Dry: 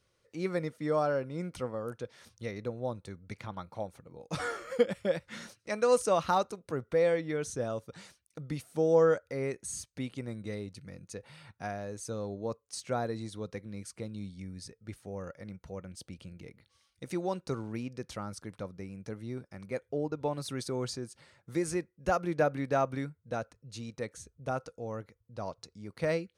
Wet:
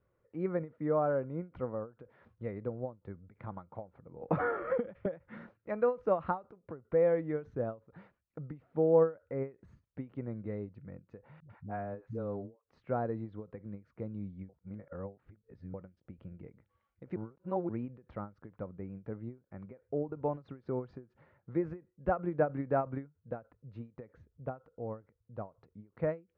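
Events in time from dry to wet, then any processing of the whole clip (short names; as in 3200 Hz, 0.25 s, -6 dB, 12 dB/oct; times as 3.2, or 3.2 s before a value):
4.22–5.06 three-band squash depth 100%
11.4–12.64 dispersion highs, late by 98 ms, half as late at 320 Hz
14.49–15.74 reverse
17.16–17.69 reverse
whole clip: de-esser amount 70%; Bessel low-pass 1200 Hz, order 4; ending taper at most 240 dB/s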